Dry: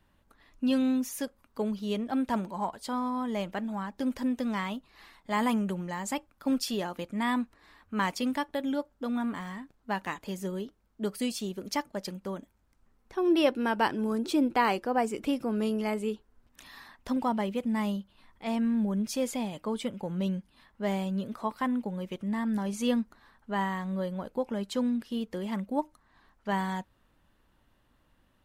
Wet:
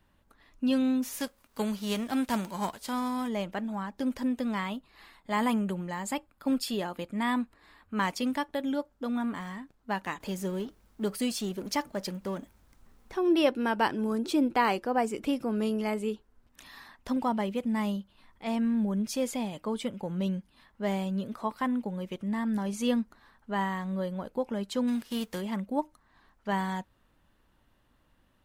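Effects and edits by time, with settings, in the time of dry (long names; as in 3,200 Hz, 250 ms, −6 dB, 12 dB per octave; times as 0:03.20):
0:01.02–0:03.27: spectral envelope flattened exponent 0.6
0:04.38–0:07.95: notch filter 5,900 Hz, Q 5.3
0:10.20–0:13.18: mu-law and A-law mismatch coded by mu
0:24.87–0:25.40: spectral envelope flattened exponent 0.6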